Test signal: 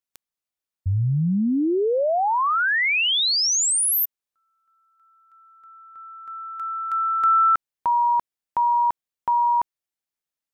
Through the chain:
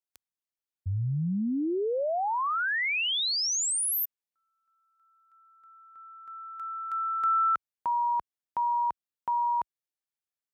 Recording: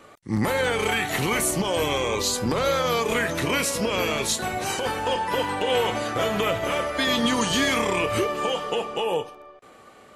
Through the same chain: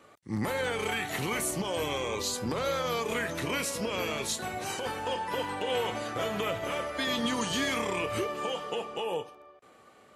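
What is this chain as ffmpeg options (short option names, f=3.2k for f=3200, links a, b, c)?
-af "highpass=55,volume=-7.5dB"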